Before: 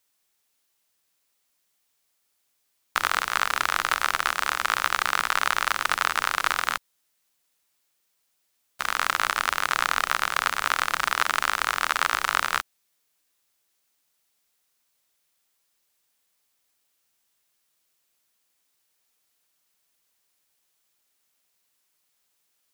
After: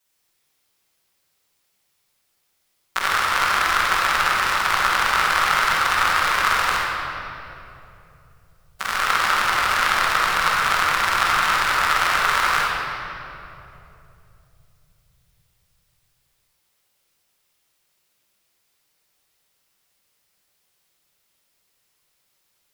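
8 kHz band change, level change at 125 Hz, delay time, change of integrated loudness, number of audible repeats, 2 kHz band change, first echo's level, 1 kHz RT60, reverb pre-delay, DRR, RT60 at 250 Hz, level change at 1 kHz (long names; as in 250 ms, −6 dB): +3.0 dB, +11.5 dB, no echo audible, +5.5 dB, no echo audible, +5.5 dB, no echo audible, 2.5 s, 5 ms, −12.0 dB, 4.5 s, +6.0 dB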